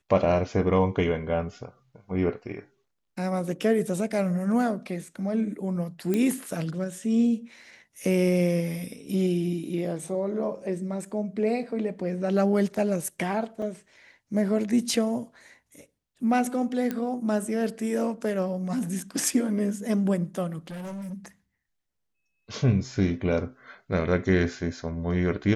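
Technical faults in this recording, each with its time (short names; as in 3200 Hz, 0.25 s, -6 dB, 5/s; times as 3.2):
6.14 pop -14 dBFS
13.62 gap 3.2 ms
16.91 pop -16 dBFS
20.67–21.14 clipped -33.5 dBFS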